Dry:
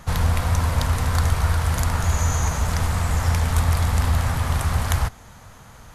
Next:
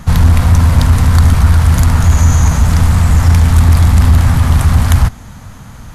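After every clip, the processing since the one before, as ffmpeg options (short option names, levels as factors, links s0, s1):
-af "lowshelf=f=330:t=q:w=1.5:g=6,aeval=exprs='0.891*sin(PI/2*1.58*val(0)/0.891)':c=same"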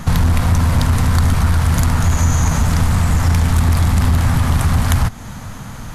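-af "equalizer=f=61:w=1.3:g=-6.5,acompressor=threshold=0.112:ratio=2,volume=1.5"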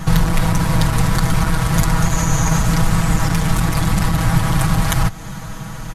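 -af "aecho=1:1:6.2:0.87,volume=0.891"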